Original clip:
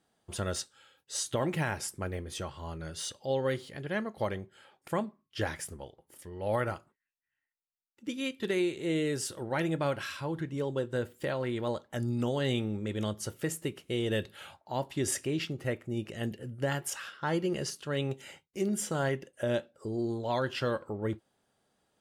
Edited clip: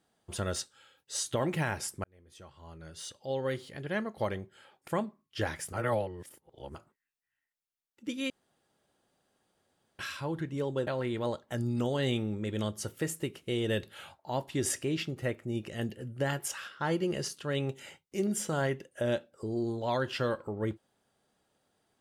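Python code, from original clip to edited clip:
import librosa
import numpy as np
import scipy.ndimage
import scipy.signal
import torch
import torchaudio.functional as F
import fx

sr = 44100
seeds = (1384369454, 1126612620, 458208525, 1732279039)

y = fx.edit(x, sr, fx.fade_in_span(start_s=2.04, length_s=1.88),
    fx.reverse_span(start_s=5.73, length_s=1.02),
    fx.room_tone_fill(start_s=8.3, length_s=1.69),
    fx.cut(start_s=10.87, length_s=0.42), tone=tone)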